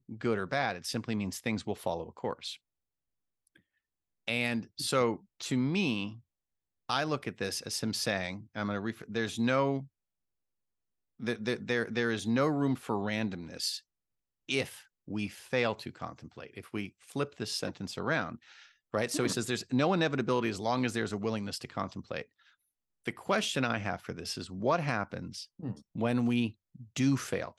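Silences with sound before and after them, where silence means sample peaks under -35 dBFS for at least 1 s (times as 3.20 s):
2.53–4.28 s
9.80–11.23 s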